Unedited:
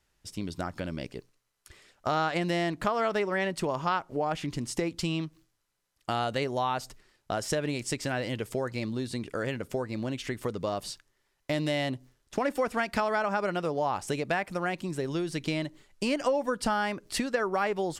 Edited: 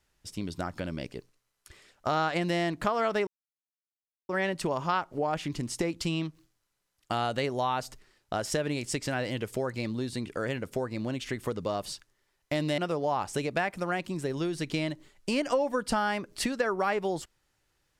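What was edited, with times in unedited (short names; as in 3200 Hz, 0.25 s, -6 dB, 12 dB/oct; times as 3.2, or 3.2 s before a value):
3.27 insert silence 1.02 s
11.76–13.52 cut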